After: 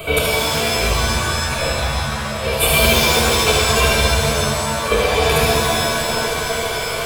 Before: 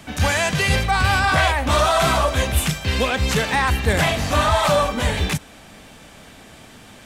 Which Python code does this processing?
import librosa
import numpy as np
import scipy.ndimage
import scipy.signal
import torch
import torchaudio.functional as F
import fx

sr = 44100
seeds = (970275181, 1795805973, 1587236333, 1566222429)

y = fx.small_body(x, sr, hz=(460.0, 660.0, 2300.0), ring_ms=100, db=17)
y = fx.over_compress(y, sr, threshold_db=-24.0, ratio=-0.5)
y = fx.high_shelf(y, sr, hz=12000.0, db=9.0)
y = fx.fixed_phaser(y, sr, hz=1200.0, stages=8)
y = y + 10.0 ** (-6.0 / 20.0) * np.pad(y, (int(75 * sr / 1000.0), 0))[:len(y)]
y = fx.buffer_glitch(y, sr, at_s=(1.05, 4.33, 5.77), block=512, repeats=8)
y = fx.rev_shimmer(y, sr, seeds[0], rt60_s=2.3, semitones=7, shimmer_db=-2, drr_db=-3.5)
y = y * 10.0 ** (1.5 / 20.0)